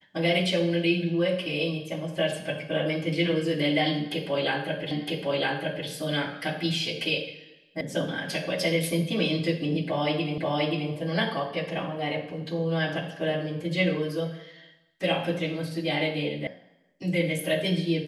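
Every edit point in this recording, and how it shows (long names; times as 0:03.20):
0:04.91: the same again, the last 0.96 s
0:07.81: cut off before it has died away
0:10.38: the same again, the last 0.53 s
0:16.47: cut off before it has died away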